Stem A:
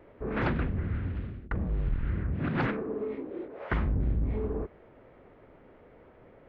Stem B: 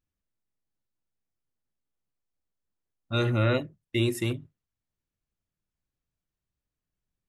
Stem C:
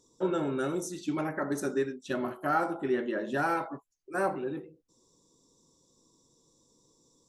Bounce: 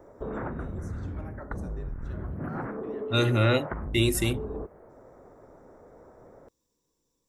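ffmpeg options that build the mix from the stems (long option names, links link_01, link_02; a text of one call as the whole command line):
ffmpeg -i stem1.wav -i stem2.wav -i stem3.wav -filter_complex "[0:a]lowpass=frequency=1600:width=0.5412,lowpass=frequency=1600:width=1.3066,volume=0.5dB[link_01];[1:a]highshelf=frequency=4800:gain=9,volume=1.5dB[link_02];[2:a]volume=-14dB[link_03];[link_01][link_03]amix=inputs=2:normalize=0,equalizer=frequency=700:width=0.76:gain=4.5,acompressor=threshold=-31dB:ratio=6,volume=0dB[link_04];[link_02][link_04]amix=inputs=2:normalize=0" out.wav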